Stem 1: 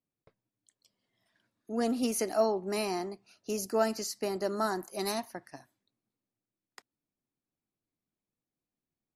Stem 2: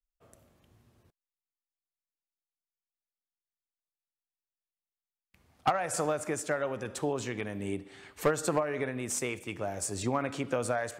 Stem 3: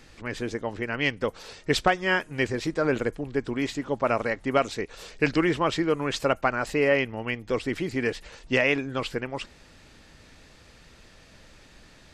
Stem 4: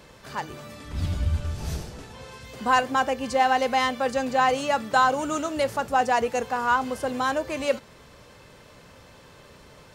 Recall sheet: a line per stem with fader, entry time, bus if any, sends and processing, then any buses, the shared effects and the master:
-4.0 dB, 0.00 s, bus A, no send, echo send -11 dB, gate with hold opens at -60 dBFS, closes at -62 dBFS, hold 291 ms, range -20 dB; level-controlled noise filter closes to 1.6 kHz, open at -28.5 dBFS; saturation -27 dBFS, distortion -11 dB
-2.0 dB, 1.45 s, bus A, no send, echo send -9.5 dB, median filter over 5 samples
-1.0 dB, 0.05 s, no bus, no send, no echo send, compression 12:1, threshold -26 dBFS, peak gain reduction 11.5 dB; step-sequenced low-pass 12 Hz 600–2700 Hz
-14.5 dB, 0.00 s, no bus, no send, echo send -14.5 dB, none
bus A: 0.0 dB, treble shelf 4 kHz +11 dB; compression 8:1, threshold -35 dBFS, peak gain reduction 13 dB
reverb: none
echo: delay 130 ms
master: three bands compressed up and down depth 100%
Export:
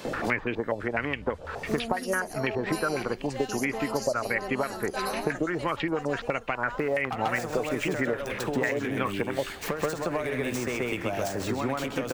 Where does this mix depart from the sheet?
stem 1: missing saturation -27 dBFS, distortion -11 dB; stem 2 -2.0 dB -> +5.5 dB; stem 4 -14.5 dB -> -20.5 dB

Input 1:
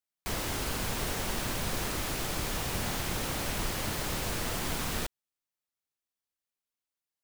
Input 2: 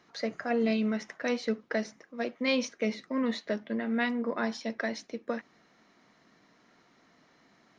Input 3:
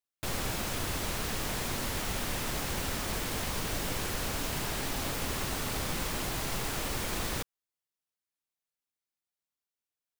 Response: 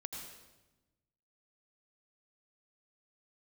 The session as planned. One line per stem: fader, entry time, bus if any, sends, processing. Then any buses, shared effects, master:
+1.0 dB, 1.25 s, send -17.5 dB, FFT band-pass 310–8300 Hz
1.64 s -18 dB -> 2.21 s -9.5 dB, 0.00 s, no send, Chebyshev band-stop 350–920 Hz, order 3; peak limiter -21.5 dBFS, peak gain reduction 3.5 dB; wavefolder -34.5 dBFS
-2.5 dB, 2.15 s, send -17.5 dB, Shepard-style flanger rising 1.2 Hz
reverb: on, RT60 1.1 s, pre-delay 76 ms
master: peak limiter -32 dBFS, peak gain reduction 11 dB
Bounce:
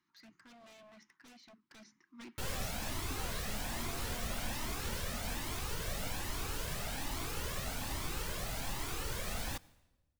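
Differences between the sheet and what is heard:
stem 1: muted; master: missing peak limiter -32 dBFS, peak gain reduction 11 dB

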